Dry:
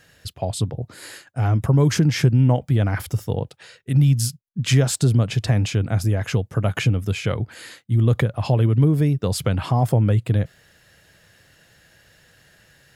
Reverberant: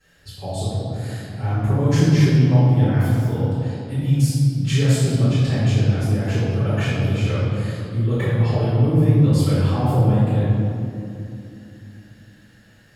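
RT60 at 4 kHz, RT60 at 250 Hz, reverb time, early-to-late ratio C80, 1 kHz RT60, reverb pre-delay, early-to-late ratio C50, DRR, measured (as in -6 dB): 1.5 s, 4.4 s, 2.8 s, -1.0 dB, 2.5 s, 4 ms, -3.5 dB, -16.0 dB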